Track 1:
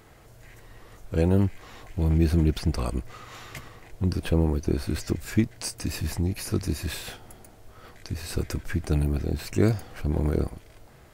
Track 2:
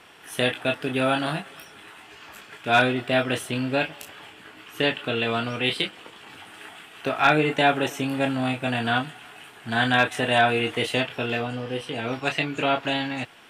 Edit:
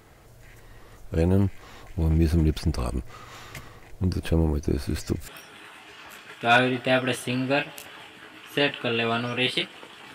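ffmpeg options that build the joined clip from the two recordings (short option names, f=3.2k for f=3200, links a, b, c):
-filter_complex "[0:a]apad=whole_dur=10.14,atrim=end=10.14,atrim=end=5.282[a];[1:a]atrim=start=1.508:end=6.37[b];[a][b]acrossfade=d=0.004:c1=hsin:c2=hsin"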